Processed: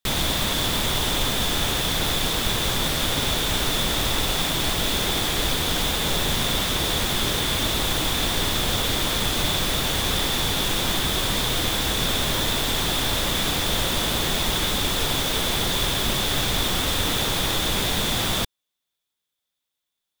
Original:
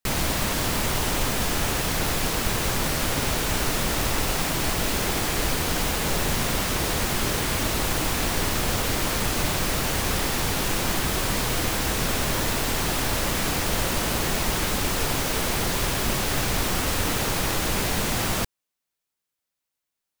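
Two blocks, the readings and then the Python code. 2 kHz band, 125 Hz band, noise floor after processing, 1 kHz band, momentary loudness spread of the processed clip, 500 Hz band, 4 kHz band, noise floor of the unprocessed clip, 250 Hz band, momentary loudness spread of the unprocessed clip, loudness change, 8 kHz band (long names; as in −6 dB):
+0.5 dB, 0.0 dB, −82 dBFS, 0.0 dB, 0 LU, 0.0 dB, +7.0 dB, −84 dBFS, 0.0 dB, 0 LU, +2.0 dB, 0.0 dB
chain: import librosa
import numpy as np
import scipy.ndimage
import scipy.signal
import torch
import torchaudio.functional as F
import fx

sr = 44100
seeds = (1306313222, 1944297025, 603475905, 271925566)

y = fx.peak_eq(x, sr, hz=3500.0, db=14.0, octaves=0.23)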